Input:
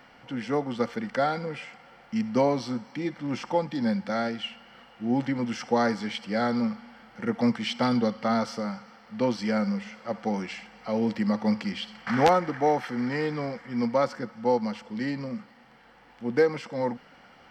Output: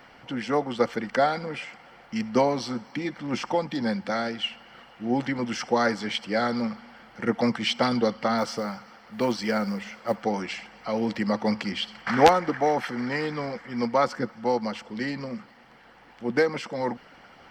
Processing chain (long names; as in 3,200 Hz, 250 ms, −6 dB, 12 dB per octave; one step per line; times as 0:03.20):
harmonic and percussive parts rebalanced harmonic −8 dB
0:08.38–0:10.23: floating-point word with a short mantissa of 4 bits
level +6 dB